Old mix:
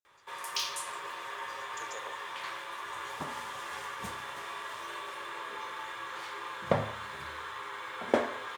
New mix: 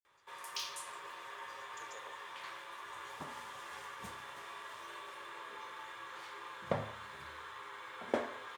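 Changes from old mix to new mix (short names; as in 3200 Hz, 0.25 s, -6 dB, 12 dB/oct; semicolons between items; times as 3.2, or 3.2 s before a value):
speech -8.5 dB; background -7.5 dB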